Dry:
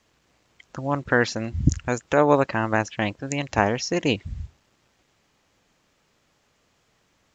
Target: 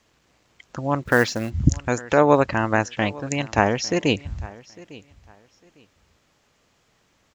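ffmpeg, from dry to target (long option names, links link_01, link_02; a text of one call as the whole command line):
ffmpeg -i in.wav -filter_complex "[0:a]aecho=1:1:853|1706:0.0891|0.0205,asplit=3[link_01][link_02][link_03];[link_01]afade=type=out:start_time=1.02:duration=0.02[link_04];[link_02]acrusher=bits=5:mode=log:mix=0:aa=0.000001,afade=type=in:start_time=1.02:duration=0.02,afade=type=out:start_time=1.49:duration=0.02[link_05];[link_03]afade=type=in:start_time=1.49:duration=0.02[link_06];[link_04][link_05][link_06]amix=inputs=3:normalize=0,volume=2dB" out.wav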